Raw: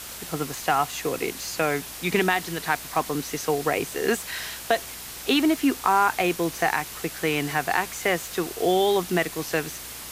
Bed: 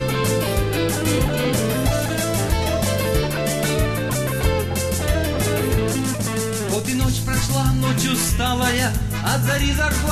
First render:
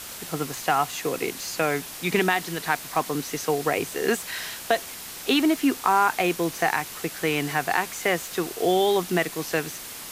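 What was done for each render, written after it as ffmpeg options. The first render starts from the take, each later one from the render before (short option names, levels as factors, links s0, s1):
-af "bandreject=f=60:t=h:w=4,bandreject=f=120:t=h:w=4"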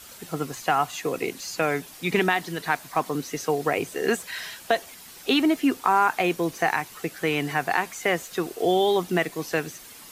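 -af "afftdn=nr=9:nf=-38"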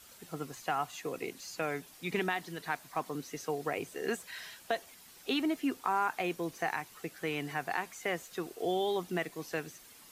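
-af "volume=0.299"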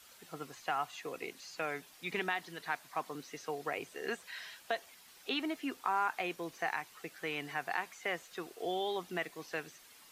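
-filter_complex "[0:a]lowshelf=f=440:g=-9.5,acrossover=split=5100[s0][s1];[s1]acompressor=threshold=0.00126:ratio=4:attack=1:release=60[s2];[s0][s2]amix=inputs=2:normalize=0"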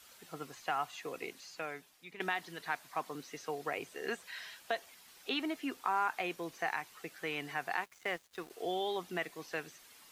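-filter_complex "[0:a]asettb=1/sr,asplit=3[s0][s1][s2];[s0]atrim=end=7.844[s3];[s1]atrim=start=7.84:end=8.5,asetpts=PTS-STARTPTS,afade=t=in:d=0.004:c=qsin,afade=t=out:st=0.656:d=0.004:c=qsin,aeval=exprs='sgn(val(0))*max(abs(val(0))-0.00224,0)':c=same[s4];[s2]atrim=start=8.496[s5];[s3][s4]acrossfade=d=0.004:c1=hsin:c2=qsin[s6];[s6][s5]acrossfade=d=0.004:c1=qsin:c2=hsin,asplit=2[s7][s8];[s7]atrim=end=2.2,asetpts=PTS-STARTPTS,afade=t=out:st=1.26:d=0.94:silence=0.158489[s9];[s8]atrim=start=2.2,asetpts=PTS-STARTPTS,afade=t=in:d=0.004:c=hsin:silence=0.158489[s10];[s9][s10]concat=n=2:v=0:a=1"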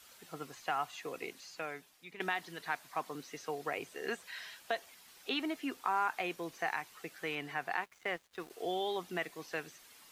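-filter_complex "[0:a]asettb=1/sr,asplit=3[s0][s1][s2];[s0]atrim=end=7.354[s3];[s1]atrim=start=7.35:end=8.4,asetpts=PTS-STARTPTS,afade=t=in:d=0.004:c=qsin,afade=t=out:st=1.046:d=0.004:c=qsin,bass=f=250:g=0,treble=f=4000:g=-5[s4];[s2]atrim=start=8.396[s5];[s3][s4]acrossfade=d=0.004:c1=hsin:c2=qsin[s6];[s6][s5]acrossfade=d=0.004:c1=qsin:c2=hsin"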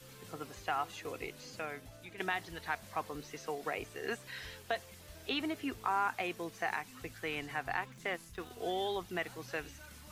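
-filter_complex "[1:a]volume=0.0188[s0];[0:a][s0]amix=inputs=2:normalize=0"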